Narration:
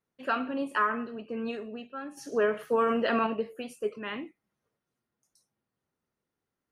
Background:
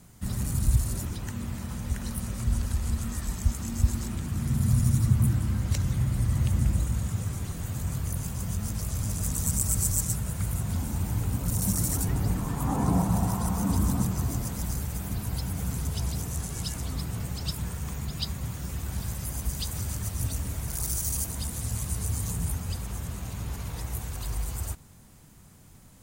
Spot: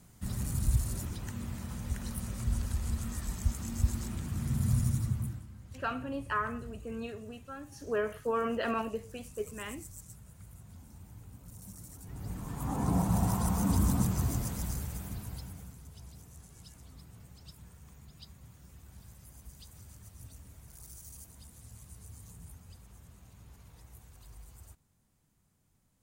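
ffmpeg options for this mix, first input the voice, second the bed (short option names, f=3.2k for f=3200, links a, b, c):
-filter_complex "[0:a]adelay=5550,volume=-5.5dB[a];[1:a]volume=15dB,afade=t=out:st=4.76:d=0.71:silence=0.141254,afade=t=in:st=12.02:d=1.29:silence=0.1,afade=t=out:st=14.26:d=1.49:silence=0.125893[b];[a][b]amix=inputs=2:normalize=0"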